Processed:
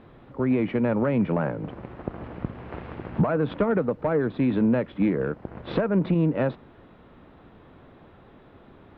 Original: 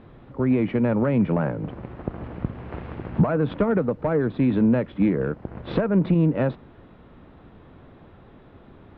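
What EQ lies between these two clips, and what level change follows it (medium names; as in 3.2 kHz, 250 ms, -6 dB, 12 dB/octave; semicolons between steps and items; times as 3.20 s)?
bass shelf 210 Hz -5.5 dB; 0.0 dB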